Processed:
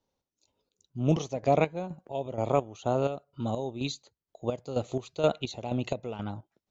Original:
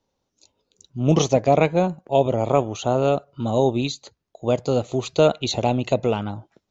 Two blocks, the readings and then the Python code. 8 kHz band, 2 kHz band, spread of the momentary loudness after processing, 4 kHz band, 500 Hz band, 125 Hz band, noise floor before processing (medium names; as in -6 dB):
no reading, -8.5 dB, 11 LU, -11.0 dB, -10.0 dB, -8.5 dB, -78 dBFS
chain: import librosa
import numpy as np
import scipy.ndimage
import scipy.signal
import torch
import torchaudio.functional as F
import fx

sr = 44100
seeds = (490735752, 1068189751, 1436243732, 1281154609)

y = fx.chopper(x, sr, hz=2.1, depth_pct=65, duty_pct=45)
y = F.gain(torch.from_numpy(y), -6.5).numpy()